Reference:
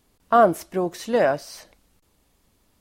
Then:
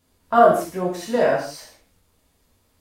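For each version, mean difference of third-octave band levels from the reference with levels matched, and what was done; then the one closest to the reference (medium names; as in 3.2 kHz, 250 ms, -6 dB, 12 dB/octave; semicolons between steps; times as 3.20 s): 5.5 dB: gated-style reverb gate 210 ms falling, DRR -5 dB; trim -5 dB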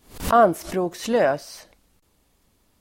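1.5 dB: swell ahead of each attack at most 140 dB/s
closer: second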